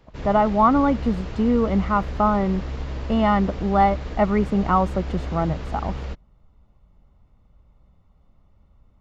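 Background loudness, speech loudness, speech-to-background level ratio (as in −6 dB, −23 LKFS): −32.5 LKFS, −21.5 LKFS, 11.0 dB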